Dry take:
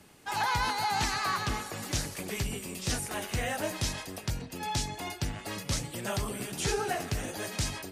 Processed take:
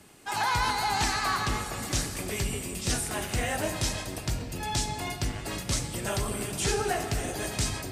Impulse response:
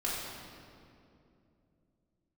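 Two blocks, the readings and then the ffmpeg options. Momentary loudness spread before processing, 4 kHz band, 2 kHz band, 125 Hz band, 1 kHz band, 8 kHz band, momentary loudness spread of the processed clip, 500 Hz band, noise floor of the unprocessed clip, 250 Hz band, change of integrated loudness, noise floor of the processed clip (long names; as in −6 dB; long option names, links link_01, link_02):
7 LU, +2.5 dB, +2.5 dB, +3.0 dB, +2.0 dB, +4.0 dB, 7 LU, +3.0 dB, −47 dBFS, +3.0 dB, +3.0 dB, −39 dBFS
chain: -filter_complex "[0:a]equalizer=frequency=8200:width=3.1:gain=4.5,asplit=2[link_01][link_02];[1:a]atrim=start_sample=2205[link_03];[link_02][link_03]afir=irnorm=-1:irlink=0,volume=-10.5dB[link_04];[link_01][link_04]amix=inputs=2:normalize=0"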